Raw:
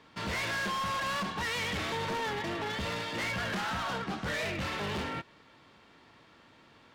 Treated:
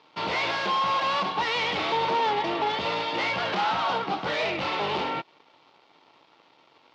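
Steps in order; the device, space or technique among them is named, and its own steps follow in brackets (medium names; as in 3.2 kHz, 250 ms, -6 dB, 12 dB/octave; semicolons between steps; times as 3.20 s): blown loudspeaker (crossover distortion -59.5 dBFS; cabinet simulation 220–4700 Hz, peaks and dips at 220 Hz -9 dB, 840 Hz +6 dB, 1.7 kHz -9 dB); trim +8.5 dB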